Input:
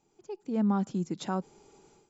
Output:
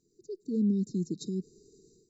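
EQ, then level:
linear-phase brick-wall band-stop 480–3,700 Hz
0.0 dB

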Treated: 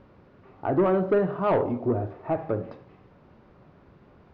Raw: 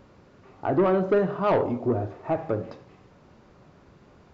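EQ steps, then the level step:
high-frequency loss of the air 230 metres
0.0 dB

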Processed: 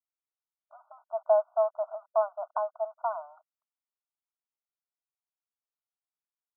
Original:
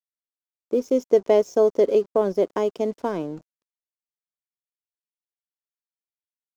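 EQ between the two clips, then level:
linear-phase brick-wall band-pass 610–1,500 Hz
0.0 dB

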